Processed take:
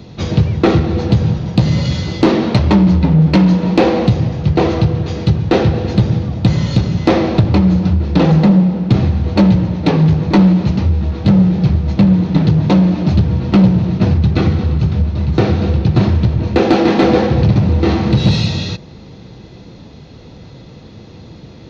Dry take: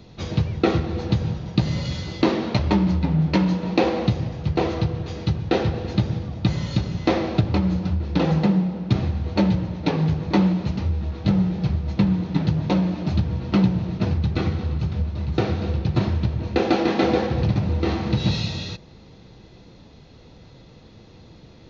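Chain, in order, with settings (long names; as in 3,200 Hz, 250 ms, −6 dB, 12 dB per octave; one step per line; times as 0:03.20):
high-pass filter 120 Hz 6 dB per octave
low-shelf EQ 260 Hz +7.5 dB
soft clipping −11 dBFS, distortion −16 dB
level +8.5 dB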